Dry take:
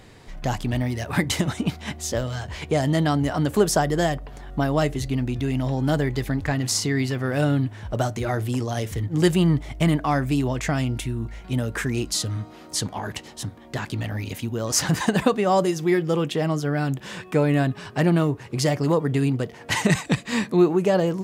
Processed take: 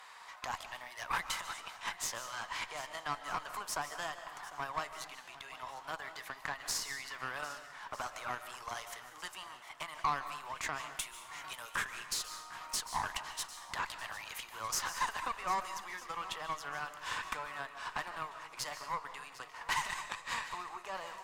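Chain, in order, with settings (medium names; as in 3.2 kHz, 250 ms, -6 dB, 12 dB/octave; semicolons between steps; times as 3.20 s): 10.94–11.74 s: treble shelf 3.6 kHz +10 dB; compression 4:1, threshold -32 dBFS, peak gain reduction 16.5 dB; ladder high-pass 920 Hz, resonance 60%; Chebyshev shaper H 4 -27 dB, 6 -18 dB, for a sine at -27.5 dBFS; shuffle delay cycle 1251 ms, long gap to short 1.5:1, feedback 35%, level -16.5 dB; algorithmic reverb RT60 0.76 s, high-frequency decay 0.95×, pre-delay 105 ms, DRR 10 dB; trim +7.5 dB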